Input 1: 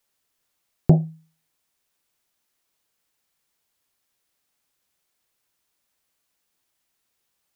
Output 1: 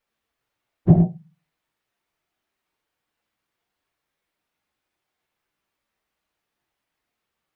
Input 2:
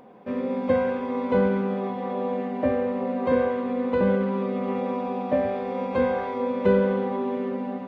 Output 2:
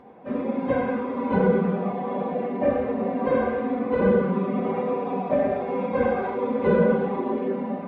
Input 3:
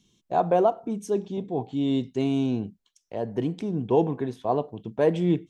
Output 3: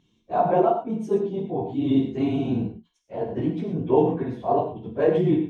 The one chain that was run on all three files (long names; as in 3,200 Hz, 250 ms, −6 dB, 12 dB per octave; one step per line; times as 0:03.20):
random phases in long frames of 50 ms
bass and treble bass 0 dB, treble −14 dB
reverb whose tail is shaped and stops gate 140 ms flat, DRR 3 dB